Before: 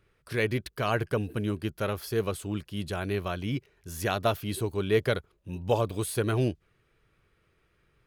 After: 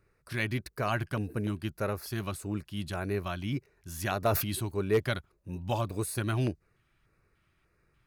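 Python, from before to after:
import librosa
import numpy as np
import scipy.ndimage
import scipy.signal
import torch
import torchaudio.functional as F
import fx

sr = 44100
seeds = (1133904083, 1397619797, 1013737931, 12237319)

y = fx.filter_lfo_notch(x, sr, shape='square', hz=1.7, low_hz=460.0, high_hz=3200.0, q=1.6)
y = 10.0 ** (-15.5 / 20.0) * (np.abs((y / 10.0 ** (-15.5 / 20.0) + 3.0) % 4.0 - 2.0) - 1.0)
y = fx.sustainer(y, sr, db_per_s=58.0, at=(4.22, 4.66), fade=0.02)
y = y * 10.0 ** (-1.5 / 20.0)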